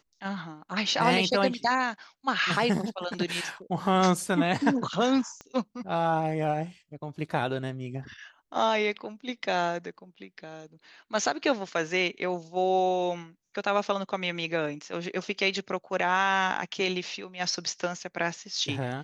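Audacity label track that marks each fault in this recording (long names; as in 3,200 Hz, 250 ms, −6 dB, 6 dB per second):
5.410000	5.410000	click −27 dBFS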